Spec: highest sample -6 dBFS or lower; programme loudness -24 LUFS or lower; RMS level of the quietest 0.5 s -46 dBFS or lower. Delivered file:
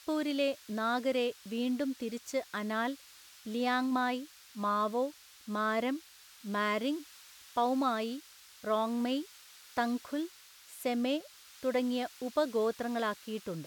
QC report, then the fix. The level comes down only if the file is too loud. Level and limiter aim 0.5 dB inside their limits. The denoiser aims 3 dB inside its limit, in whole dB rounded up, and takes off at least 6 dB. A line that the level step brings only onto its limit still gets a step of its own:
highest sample -16.0 dBFS: pass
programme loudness -33.5 LUFS: pass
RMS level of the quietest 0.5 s -56 dBFS: pass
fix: none needed

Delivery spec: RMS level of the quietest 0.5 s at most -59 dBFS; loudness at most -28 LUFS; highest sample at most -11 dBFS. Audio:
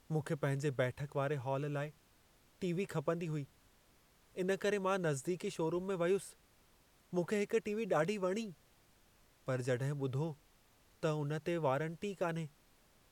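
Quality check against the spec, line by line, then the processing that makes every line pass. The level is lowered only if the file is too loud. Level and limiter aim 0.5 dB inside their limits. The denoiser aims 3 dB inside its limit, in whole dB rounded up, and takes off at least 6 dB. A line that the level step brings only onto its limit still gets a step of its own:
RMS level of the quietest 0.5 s -68 dBFS: pass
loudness -37.5 LUFS: pass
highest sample -21.0 dBFS: pass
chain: none needed

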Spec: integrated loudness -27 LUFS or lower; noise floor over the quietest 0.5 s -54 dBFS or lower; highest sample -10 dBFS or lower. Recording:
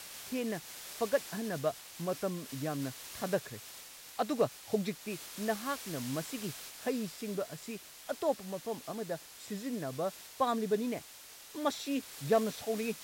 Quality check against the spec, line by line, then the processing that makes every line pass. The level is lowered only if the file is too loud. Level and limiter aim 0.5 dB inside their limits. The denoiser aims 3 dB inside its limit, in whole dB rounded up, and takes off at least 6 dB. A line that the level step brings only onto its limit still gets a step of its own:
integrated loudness -36.5 LUFS: pass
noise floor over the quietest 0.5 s -52 dBFS: fail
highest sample -18.0 dBFS: pass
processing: noise reduction 6 dB, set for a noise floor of -52 dBFS

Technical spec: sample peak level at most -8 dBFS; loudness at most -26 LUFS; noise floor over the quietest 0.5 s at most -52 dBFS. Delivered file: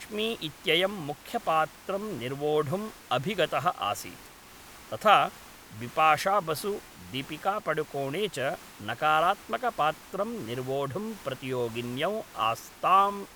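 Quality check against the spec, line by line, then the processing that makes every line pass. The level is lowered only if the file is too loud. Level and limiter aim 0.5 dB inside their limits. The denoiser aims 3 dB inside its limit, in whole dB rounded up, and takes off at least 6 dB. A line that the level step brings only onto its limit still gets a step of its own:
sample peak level -5.5 dBFS: fail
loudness -28.5 LUFS: pass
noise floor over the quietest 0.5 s -50 dBFS: fail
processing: noise reduction 6 dB, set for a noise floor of -50 dBFS; peak limiter -8.5 dBFS

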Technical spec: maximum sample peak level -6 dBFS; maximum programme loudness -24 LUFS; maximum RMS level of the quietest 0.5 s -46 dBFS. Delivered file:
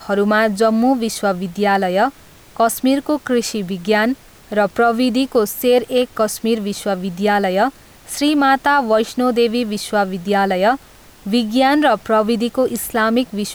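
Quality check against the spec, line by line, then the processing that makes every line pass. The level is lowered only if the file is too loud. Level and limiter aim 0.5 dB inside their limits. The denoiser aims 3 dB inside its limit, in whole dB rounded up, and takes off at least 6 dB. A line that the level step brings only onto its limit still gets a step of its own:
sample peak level -5.0 dBFS: fail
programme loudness -17.0 LUFS: fail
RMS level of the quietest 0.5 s -43 dBFS: fail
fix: trim -7.5 dB

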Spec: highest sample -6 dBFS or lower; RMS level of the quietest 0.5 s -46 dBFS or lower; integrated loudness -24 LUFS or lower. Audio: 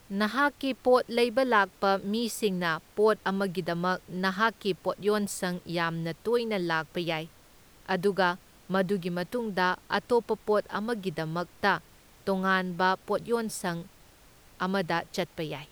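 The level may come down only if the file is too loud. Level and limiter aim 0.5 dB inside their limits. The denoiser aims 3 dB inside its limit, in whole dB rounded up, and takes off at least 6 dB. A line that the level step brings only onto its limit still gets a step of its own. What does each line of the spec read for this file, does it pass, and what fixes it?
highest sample -10.0 dBFS: pass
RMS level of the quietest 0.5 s -56 dBFS: pass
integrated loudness -28.5 LUFS: pass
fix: none needed

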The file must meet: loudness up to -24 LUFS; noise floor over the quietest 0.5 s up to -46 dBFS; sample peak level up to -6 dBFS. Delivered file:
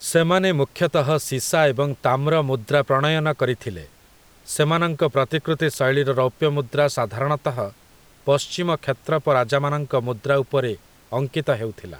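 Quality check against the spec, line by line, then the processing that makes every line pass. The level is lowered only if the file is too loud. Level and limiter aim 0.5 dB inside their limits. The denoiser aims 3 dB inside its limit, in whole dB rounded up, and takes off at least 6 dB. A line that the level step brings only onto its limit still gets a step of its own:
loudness -21.5 LUFS: fail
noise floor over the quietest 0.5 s -52 dBFS: pass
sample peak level -4.5 dBFS: fail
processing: trim -3 dB

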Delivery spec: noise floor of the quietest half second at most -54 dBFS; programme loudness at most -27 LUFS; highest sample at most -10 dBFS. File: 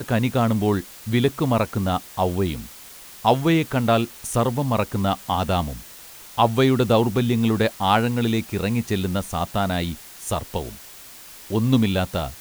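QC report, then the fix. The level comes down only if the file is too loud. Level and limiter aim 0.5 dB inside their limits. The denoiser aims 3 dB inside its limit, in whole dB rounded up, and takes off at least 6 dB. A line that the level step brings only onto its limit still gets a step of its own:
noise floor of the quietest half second -43 dBFS: fail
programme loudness -22.5 LUFS: fail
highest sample -4.5 dBFS: fail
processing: noise reduction 9 dB, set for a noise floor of -43 dBFS; trim -5 dB; peak limiter -10.5 dBFS

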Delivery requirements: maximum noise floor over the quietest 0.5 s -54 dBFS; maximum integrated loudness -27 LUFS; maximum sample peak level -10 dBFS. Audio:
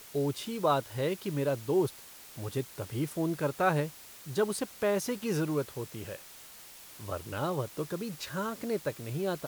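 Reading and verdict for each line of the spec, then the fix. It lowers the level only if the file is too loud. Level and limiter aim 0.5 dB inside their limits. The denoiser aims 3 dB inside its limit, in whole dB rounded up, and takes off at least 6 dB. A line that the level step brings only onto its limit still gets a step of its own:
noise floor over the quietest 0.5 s -50 dBFS: fail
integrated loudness -33.0 LUFS: pass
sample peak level -14.0 dBFS: pass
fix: noise reduction 7 dB, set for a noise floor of -50 dBFS

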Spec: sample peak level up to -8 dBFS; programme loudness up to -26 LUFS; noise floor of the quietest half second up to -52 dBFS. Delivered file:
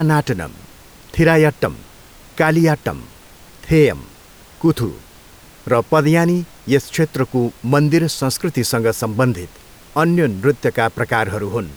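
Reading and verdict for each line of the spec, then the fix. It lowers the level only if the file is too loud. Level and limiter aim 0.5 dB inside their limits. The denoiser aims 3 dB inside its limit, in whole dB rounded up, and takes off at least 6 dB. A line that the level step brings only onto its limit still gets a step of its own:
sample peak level -2.5 dBFS: fail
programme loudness -17.5 LUFS: fail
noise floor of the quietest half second -43 dBFS: fail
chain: noise reduction 6 dB, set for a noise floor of -43 dBFS; trim -9 dB

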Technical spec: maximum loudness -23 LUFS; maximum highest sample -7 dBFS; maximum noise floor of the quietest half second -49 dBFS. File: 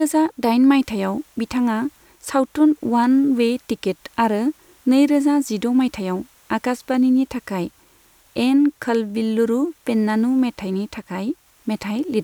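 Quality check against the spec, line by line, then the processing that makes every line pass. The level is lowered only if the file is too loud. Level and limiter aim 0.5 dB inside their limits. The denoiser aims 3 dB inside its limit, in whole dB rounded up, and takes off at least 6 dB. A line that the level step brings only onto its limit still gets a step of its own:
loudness -20.0 LUFS: fail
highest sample -4.0 dBFS: fail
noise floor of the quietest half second -54 dBFS: pass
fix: trim -3.5 dB

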